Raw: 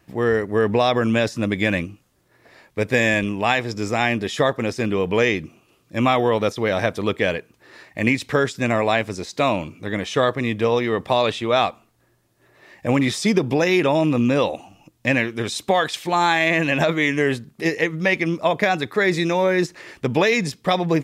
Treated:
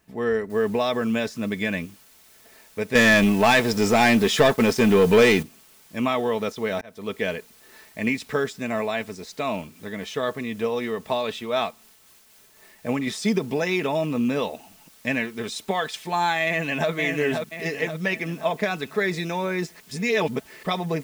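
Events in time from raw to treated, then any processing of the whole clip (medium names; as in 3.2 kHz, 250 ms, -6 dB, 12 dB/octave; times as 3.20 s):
0.50 s: noise floor step -67 dB -48 dB
2.95–5.43 s: waveshaping leveller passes 3
6.81–7.22 s: fade in
8.54–13.07 s: tremolo 3.9 Hz, depth 29%
16.45–16.90 s: echo throw 530 ms, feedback 50%, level -5 dB
19.80–20.63 s: reverse
whole clip: comb 4.6 ms, depth 50%; trim -6.5 dB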